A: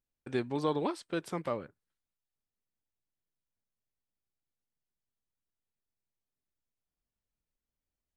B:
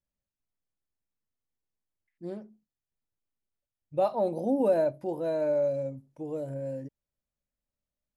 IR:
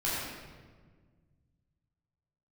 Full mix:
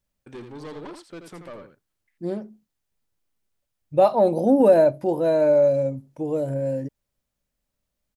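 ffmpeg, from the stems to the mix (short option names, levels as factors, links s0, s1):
-filter_complex "[0:a]asoftclip=type=tanh:threshold=0.0224,volume=0.891,asplit=2[s0][s1];[s1]volume=0.447[s2];[1:a]acontrast=67,volume=1.41[s3];[s2]aecho=0:1:82:1[s4];[s0][s3][s4]amix=inputs=3:normalize=0"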